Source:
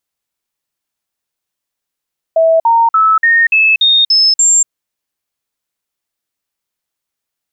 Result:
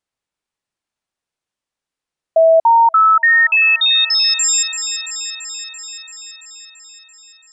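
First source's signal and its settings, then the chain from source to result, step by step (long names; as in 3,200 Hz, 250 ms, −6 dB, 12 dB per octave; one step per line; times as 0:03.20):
stepped sweep 652 Hz up, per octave 2, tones 8, 0.24 s, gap 0.05 s −6 dBFS
high-shelf EQ 3,600 Hz −8 dB
on a send: delay with a high-pass on its return 337 ms, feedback 70%, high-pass 2,700 Hz, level −9 dB
on the sum: downsampling to 22,050 Hz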